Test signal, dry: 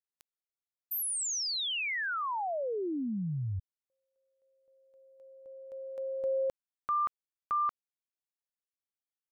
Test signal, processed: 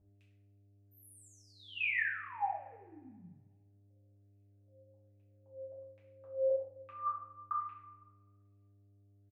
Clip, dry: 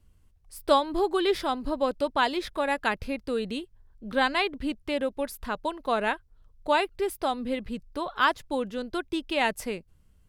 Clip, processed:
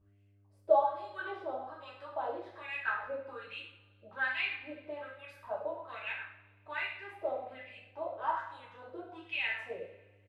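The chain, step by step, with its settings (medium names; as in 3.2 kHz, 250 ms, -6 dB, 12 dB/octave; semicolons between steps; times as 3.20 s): in parallel at +1 dB: compression, threshold -35 dBFS; on the sum: delay 100 ms -13.5 dB; wah-wah 1.2 Hz 520–2500 Hz, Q 7; mains buzz 100 Hz, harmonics 7, -63 dBFS -9 dB/octave; two-slope reverb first 0.5 s, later 1.5 s, from -17 dB, DRR -7 dB; trim -8 dB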